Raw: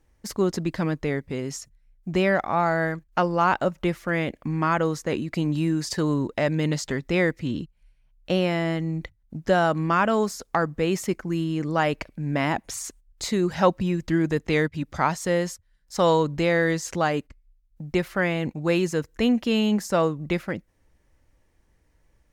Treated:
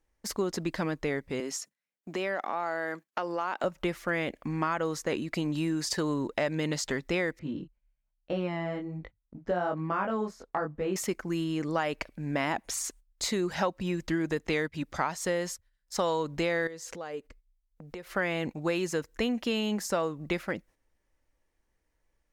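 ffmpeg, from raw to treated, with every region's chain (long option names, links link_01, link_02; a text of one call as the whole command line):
ffmpeg -i in.wav -filter_complex "[0:a]asettb=1/sr,asplit=3[link_01][link_02][link_03];[link_01]atrim=end=1.404[link_04];[link_02]atrim=start=1.4:end=3.64,asetpts=PTS-STARTPTS,afade=type=in:duration=0.004:curve=qsin,afade=type=out:start_time=2.236:duration=0.004:curve=qsin,highpass=frequency=210:width=0.5412,highpass=frequency=210:width=1.3066,acompressor=threshold=-27dB:ratio=3:attack=3.2:release=140:knee=1:detection=peak[link_05];[link_03]atrim=start=3.636[link_06];[link_04][link_05]acrossfade=duration=0.004:curve1=hsin:curve2=qsin[link_07];[link_07][link_06]acrossfade=duration=0.004:curve1=qsin:curve2=hsin,asettb=1/sr,asplit=3[link_08][link_09][link_10];[link_08]atrim=end=7.394[link_11];[link_09]atrim=start=7.39:end=10.96,asetpts=PTS-STARTPTS,afade=type=in:duration=0.004:curve=qsin,afade=type=out:start_time=3.566:duration=0.004:curve=qsin,lowpass=frequency=1000:poles=1,flanger=delay=19.5:depth=3.5:speed=1.2[link_12];[link_10]atrim=start=10.956[link_13];[link_11][link_12]acrossfade=duration=0.004:curve1=hsin:curve2=qsin[link_14];[link_14][link_13]acrossfade=duration=0.004:curve1=qsin:curve2=hsin,asettb=1/sr,asplit=3[link_15][link_16][link_17];[link_15]atrim=end=16.674[link_18];[link_16]atrim=start=16.67:end=18.14,asetpts=PTS-STARTPTS,afade=type=in:duration=0.004:curve=qsin,afade=type=out:start_time=1.466:duration=0.004:curve=qsin,bandreject=frequency=400:width=6,acompressor=threshold=-38dB:ratio=6:attack=3.2:release=140:knee=1:detection=peak,equalizer=frequency=450:width=3.1:gain=11.5[link_19];[link_17]atrim=start=18.136[link_20];[link_18][link_19]acrossfade=duration=0.004:curve1=hsin:curve2=qsin[link_21];[link_21][link_20]acrossfade=duration=0.004:curve1=qsin:curve2=hsin,agate=range=-9dB:threshold=-51dB:ratio=16:detection=peak,equalizer=frequency=99:width=0.5:gain=-9,acompressor=threshold=-25dB:ratio=6" out.wav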